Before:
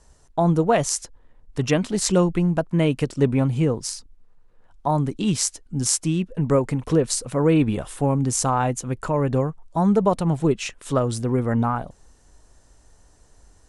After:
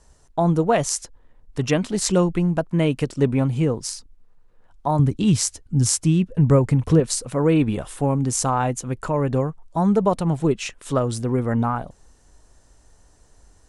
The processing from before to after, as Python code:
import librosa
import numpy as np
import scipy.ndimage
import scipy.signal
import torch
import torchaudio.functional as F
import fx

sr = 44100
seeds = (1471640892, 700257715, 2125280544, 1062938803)

y = fx.peak_eq(x, sr, hz=91.0, db=13.0, octaves=1.5, at=(4.99, 7.0))